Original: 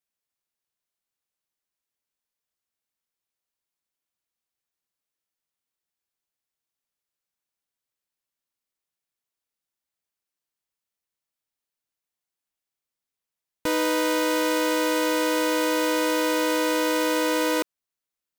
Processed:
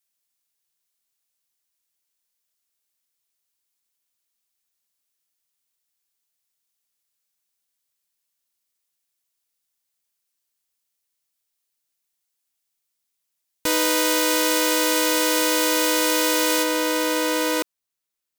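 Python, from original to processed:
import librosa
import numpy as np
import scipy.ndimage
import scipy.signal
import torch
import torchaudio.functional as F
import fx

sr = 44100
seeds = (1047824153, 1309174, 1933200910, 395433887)

y = fx.high_shelf(x, sr, hz=2800.0, db=fx.steps((0.0, 11.5), (16.62, 5.0)))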